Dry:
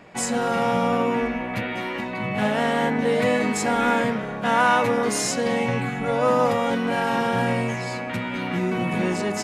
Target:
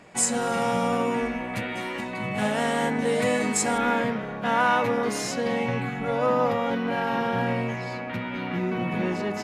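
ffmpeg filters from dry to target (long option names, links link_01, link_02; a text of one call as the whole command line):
ffmpeg -i in.wav -af "asetnsamples=nb_out_samples=441:pad=0,asendcmd='3.78 equalizer g -6.5;6.26 equalizer g -13.5',equalizer=frequency=8500:width=1.1:gain=9.5,volume=-3dB" out.wav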